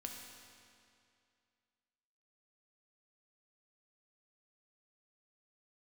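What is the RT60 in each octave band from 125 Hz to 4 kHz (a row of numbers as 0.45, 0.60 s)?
2.4, 2.4, 2.4, 2.4, 2.3, 2.1 s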